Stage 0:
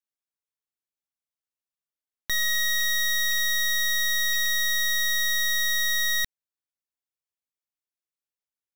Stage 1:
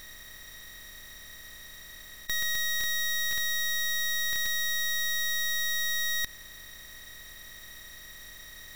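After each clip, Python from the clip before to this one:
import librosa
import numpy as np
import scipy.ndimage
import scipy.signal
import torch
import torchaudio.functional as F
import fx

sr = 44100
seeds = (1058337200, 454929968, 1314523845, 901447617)

y = fx.bin_compress(x, sr, power=0.2)
y = F.gain(torch.from_numpy(y), -5.5).numpy()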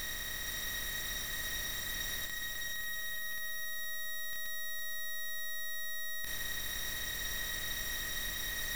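y = fx.over_compress(x, sr, threshold_db=-35.0, ratio=-0.5)
y = fx.echo_feedback(y, sr, ms=462, feedback_pct=56, wet_db=-6.0)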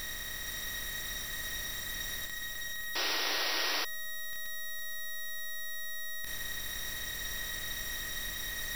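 y = fx.spec_paint(x, sr, seeds[0], shape='noise', start_s=2.95, length_s=0.9, low_hz=290.0, high_hz=5900.0, level_db=-33.0)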